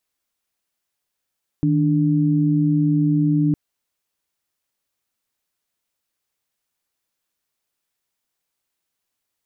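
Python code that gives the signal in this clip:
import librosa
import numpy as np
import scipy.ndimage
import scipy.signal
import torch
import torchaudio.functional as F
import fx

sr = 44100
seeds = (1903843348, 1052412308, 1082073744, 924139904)

y = fx.chord(sr, length_s=1.91, notes=(51, 62), wave='sine', level_db=-17.5)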